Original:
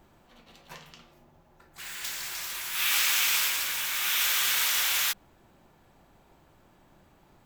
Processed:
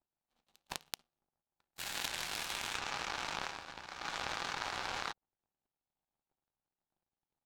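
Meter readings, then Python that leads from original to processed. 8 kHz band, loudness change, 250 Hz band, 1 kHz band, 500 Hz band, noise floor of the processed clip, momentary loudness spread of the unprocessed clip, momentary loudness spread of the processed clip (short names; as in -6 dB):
-17.0 dB, -14.5 dB, n/a, -2.5 dB, +1.5 dB, under -85 dBFS, 13 LU, 9 LU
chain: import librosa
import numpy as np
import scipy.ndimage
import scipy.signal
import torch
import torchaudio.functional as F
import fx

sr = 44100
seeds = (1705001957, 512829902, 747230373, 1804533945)

p1 = fx.env_lowpass_down(x, sr, base_hz=1100.0, full_db=-27.0)
p2 = fx.power_curve(p1, sr, exponent=3.0)
p3 = fx.over_compress(p2, sr, threshold_db=-58.0, ratio=-0.5)
p4 = p2 + F.gain(torch.from_numpy(p3), 1.0).numpy()
p5 = fx.graphic_eq_31(p4, sr, hz=(800, 2000, 4000, 16000), db=(6, -3, 3, 6))
y = F.gain(torch.from_numpy(p5), 10.5).numpy()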